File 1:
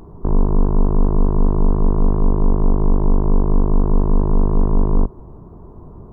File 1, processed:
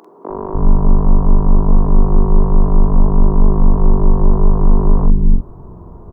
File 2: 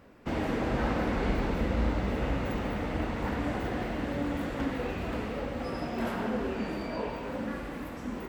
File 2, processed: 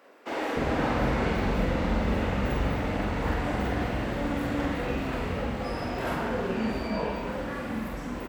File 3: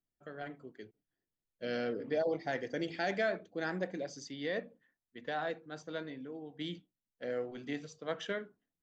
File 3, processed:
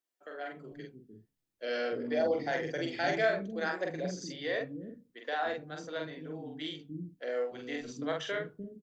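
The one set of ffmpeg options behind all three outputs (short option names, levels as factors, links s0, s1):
-filter_complex "[0:a]asplit=2[s0][s1];[s1]adelay=45,volume=0.708[s2];[s0][s2]amix=inputs=2:normalize=0,acrossover=split=310[s3][s4];[s3]adelay=300[s5];[s5][s4]amix=inputs=2:normalize=0,volume=1.33"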